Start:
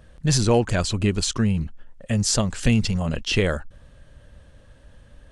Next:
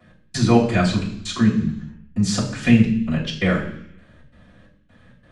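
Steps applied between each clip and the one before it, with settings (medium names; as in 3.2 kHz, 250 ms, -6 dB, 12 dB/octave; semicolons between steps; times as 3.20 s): trance gate "x..xx.xx" 132 bpm -60 dB; reverberation RT60 0.70 s, pre-delay 3 ms, DRR -15.5 dB; trim -12 dB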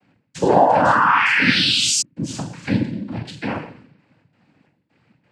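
painted sound rise, 0.41–2.02 s, 430–5900 Hz -12 dBFS; noise-vocoded speech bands 8; dynamic bell 840 Hz, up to +5 dB, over -31 dBFS, Q 0.76; trim -6.5 dB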